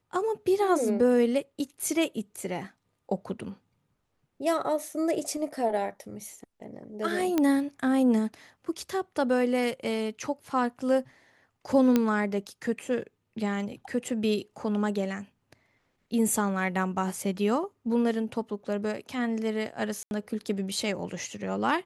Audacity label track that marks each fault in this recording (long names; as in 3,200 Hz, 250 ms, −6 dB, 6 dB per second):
7.380000	7.380000	click −12 dBFS
11.960000	11.960000	click −10 dBFS
20.030000	20.110000	drop-out 81 ms